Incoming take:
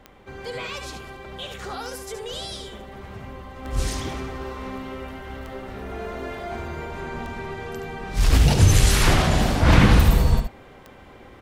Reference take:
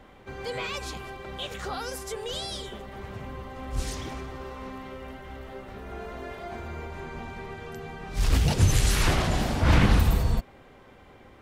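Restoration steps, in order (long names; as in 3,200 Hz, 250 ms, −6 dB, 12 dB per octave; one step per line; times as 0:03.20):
click removal
echo removal 72 ms −7.5 dB
level correction −5 dB, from 0:03.65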